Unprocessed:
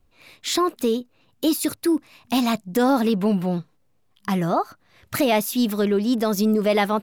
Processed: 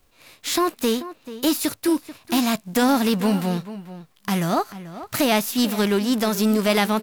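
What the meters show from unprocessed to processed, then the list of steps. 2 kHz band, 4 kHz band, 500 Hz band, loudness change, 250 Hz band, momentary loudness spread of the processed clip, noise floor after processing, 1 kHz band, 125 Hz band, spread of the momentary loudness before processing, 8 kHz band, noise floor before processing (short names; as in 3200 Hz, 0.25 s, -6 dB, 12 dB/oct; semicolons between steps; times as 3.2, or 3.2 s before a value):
+3.0 dB, +3.0 dB, -1.5 dB, +0.5 dB, +0.5 dB, 13 LU, -60 dBFS, 0.0 dB, +0.5 dB, 7 LU, +3.0 dB, -63 dBFS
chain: spectral whitening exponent 0.6; outdoor echo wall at 75 m, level -14 dB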